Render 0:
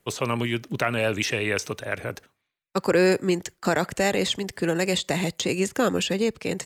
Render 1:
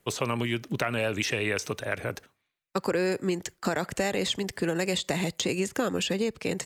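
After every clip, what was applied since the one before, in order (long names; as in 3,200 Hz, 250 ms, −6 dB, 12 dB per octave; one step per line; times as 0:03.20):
downward compressor 4 to 1, threshold −24 dBFS, peak gain reduction 8 dB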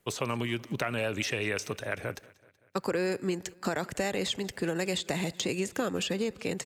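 repeating echo 189 ms, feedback 59%, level −23 dB
level −3 dB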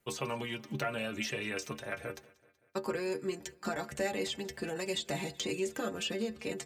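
stiff-string resonator 70 Hz, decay 0.25 s, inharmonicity 0.008
level +3 dB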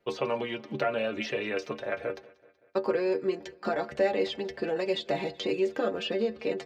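drawn EQ curve 130 Hz 0 dB, 540 Hz +13 dB, 950 Hz +7 dB, 4,700 Hz +3 dB, 8,000 Hz −15 dB
level −2.5 dB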